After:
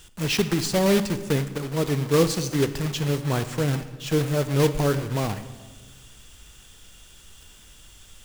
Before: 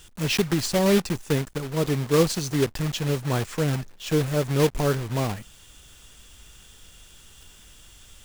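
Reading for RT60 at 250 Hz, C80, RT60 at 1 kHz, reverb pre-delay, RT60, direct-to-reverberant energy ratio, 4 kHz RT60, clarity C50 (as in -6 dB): 1.7 s, 14.0 dB, 1.3 s, 24 ms, 1.5 s, 11.0 dB, 1.1 s, 12.5 dB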